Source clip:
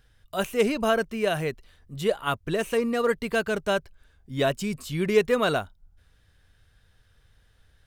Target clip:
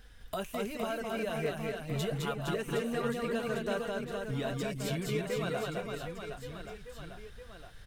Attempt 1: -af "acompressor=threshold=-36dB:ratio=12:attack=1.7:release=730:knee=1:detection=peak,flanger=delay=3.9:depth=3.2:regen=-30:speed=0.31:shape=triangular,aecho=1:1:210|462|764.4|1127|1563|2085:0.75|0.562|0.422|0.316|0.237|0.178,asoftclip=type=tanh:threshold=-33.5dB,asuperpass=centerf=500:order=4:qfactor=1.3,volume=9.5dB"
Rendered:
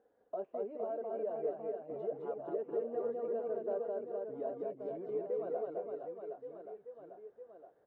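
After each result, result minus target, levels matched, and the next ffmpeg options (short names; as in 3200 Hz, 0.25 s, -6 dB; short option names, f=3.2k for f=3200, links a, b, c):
soft clip: distortion +19 dB; 500 Hz band +3.0 dB
-af "acompressor=threshold=-36dB:ratio=12:attack=1.7:release=730:knee=1:detection=peak,flanger=delay=3.9:depth=3.2:regen=-30:speed=0.31:shape=triangular,aecho=1:1:210|462|764.4|1127|1563|2085:0.75|0.562|0.422|0.316|0.237|0.178,asoftclip=type=tanh:threshold=-23dB,asuperpass=centerf=500:order=4:qfactor=1.3,volume=9.5dB"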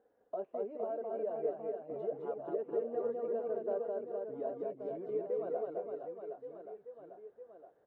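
500 Hz band +3.0 dB
-af "acompressor=threshold=-36dB:ratio=12:attack=1.7:release=730:knee=1:detection=peak,flanger=delay=3.9:depth=3.2:regen=-30:speed=0.31:shape=triangular,aecho=1:1:210|462|764.4|1127|1563|2085:0.75|0.562|0.422|0.316|0.237|0.178,asoftclip=type=tanh:threshold=-23dB,volume=9.5dB"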